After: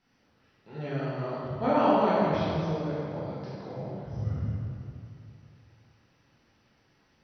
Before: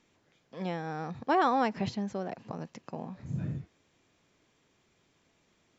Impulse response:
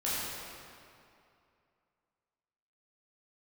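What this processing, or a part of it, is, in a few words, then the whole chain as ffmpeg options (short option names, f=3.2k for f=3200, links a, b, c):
slowed and reverbed: -filter_complex "[0:a]asetrate=35280,aresample=44100[a];[1:a]atrim=start_sample=2205[b];[a][b]afir=irnorm=-1:irlink=0,volume=-4dB"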